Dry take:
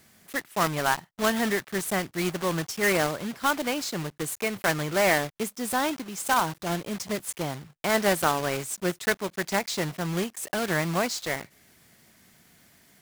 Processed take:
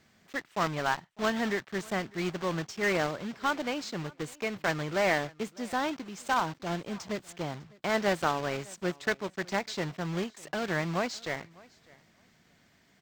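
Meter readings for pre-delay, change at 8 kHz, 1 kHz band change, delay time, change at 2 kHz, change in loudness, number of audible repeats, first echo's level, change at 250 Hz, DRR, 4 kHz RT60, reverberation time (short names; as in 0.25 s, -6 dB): none, -11.5 dB, -4.0 dB, 0.602 s, -4.5 dB, -4.5 dB, 1, -24.0 dB, -4.0 dB, none, none, none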